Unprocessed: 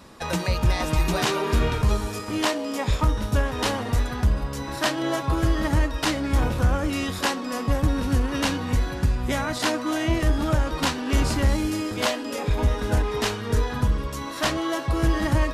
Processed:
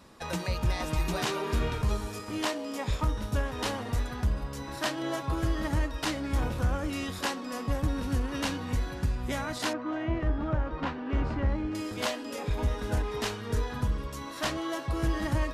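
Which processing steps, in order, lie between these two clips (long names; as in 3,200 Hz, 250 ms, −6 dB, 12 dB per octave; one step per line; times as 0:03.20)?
0:09.73–0:11.75: low-pass filter 1,900 Hz 12 dB per octave
level −7 dB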